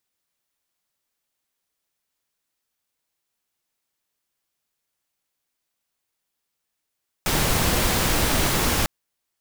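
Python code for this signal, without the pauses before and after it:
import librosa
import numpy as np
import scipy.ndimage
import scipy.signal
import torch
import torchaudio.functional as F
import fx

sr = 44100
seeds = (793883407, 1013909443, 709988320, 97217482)

y = fx.noise_colour(sr, seeds[0], length_s=1.6, colour='pink', level_db=-21.0)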